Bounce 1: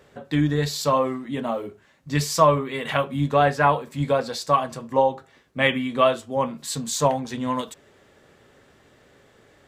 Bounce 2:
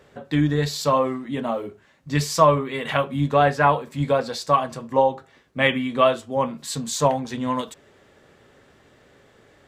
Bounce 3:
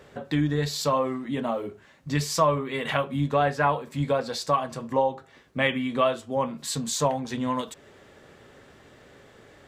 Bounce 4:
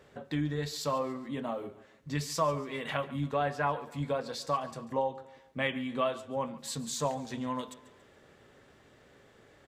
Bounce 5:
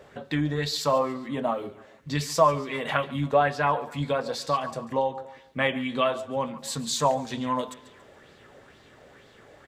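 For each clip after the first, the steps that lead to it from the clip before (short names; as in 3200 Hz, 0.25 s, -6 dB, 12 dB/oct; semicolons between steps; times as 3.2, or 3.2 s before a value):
high shelf 7500 Hz -4 dB; gain +1 dB
compressor 1.5:1, threshold -35 dBFS, peak gain reduction 9 dB; gain +2.5 dB
feedback echo 0.141 s, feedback 42%, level -17.5 dB; gain -7.5 dB
LFO bell 2.1 Hz 590–4400 Hz +8 dB; gain +5 dB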